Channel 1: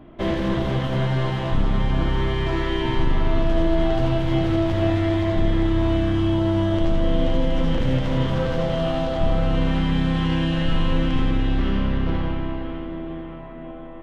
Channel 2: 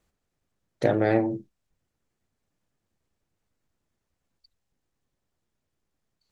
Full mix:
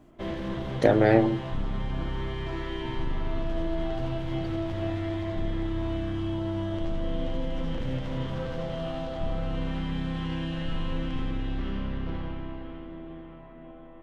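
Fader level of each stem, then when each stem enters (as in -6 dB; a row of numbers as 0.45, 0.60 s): -10.0, +2.5 dB; 0.00, 0.00 s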